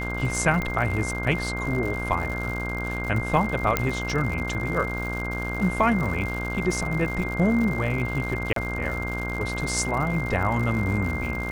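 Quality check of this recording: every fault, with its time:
buzz 60 Hz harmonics 27 -31 dBFS
crackle 160 per s -31 dBFS
whine 2.1 kHz -31 dBFS
0.62 s: pop -15 dBFS
3.77 s: pop -6 dBFS
8.53–8.56 s: dropout 33 ms

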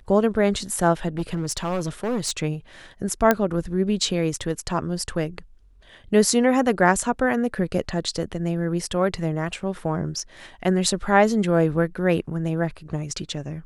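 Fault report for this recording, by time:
1.08–2.32 s: clipped -20.5 dBFS
3.31 s: pop -4 dBFS

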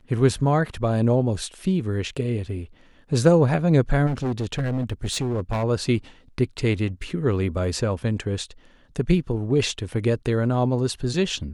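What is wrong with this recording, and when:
4.06–5.64 s: clipped -21 dBFS

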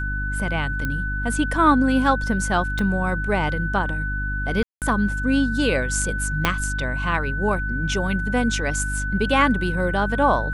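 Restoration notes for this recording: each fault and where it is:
hum 50 Hz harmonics 6 -27 dBFS
whine 1.5 kHz -27 dBFS
0.85 s: pop -13 dBFS
2.79 s: pop -14 dBFS
4.63–4.82 s: dropout 188 ms
6.45 s: pop -3 dBFS

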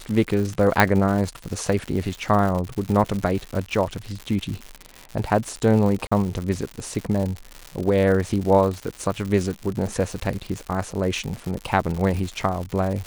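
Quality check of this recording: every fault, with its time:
crackle 170 per s -27 dBFS
0.80 s: pop -2 dBFS
6.07–6.12 s: dropout 45 ms

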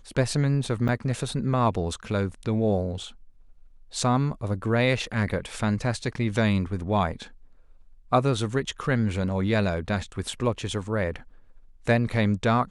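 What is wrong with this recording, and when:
0.88–0.89 s: dropout 7 ms

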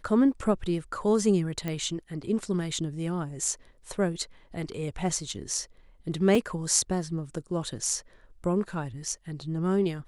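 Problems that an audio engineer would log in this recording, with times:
1.68 s: pop -18 dBFS
6.35 s: dropout 2.9 ms

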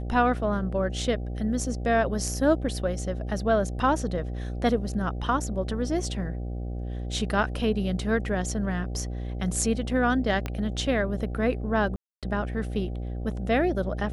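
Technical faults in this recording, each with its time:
buzz 60 Hz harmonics 13 -32 dBFS
10.46 s: pop -16 dBFS
11.96–12.23 s: dropout 267 ms

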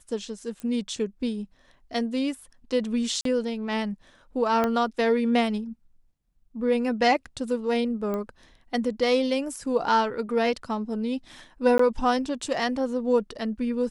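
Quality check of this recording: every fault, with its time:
0.60 s: pop -23 dBFS
3.21–3.25 s: dropout 43 ms
4.64 s: pop -12 dBFS
8.14 s: pop -19 dBFS
11.78–11.79 s: dropout 14 ms

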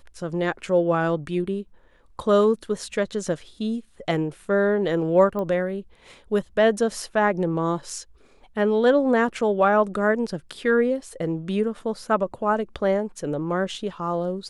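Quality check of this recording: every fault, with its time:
5.39 s: pop -19 dBFS

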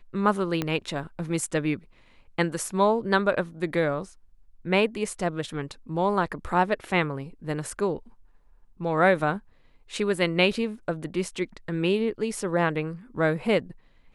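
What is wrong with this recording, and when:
0.62 s: pop -13 dBFS

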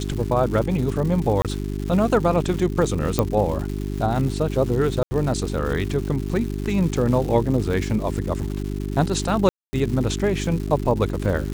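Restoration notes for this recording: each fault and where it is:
crackle 310 per s -29 dBFS
hum 50 Hz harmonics 8 -27 dBFS
1.42–1.45 s: dropout 27 ms
3.19 s: pop -5 dBFS
5.03–5.11 s: dropout 80 ms
9.49–9.73 s: dropout 240 ms

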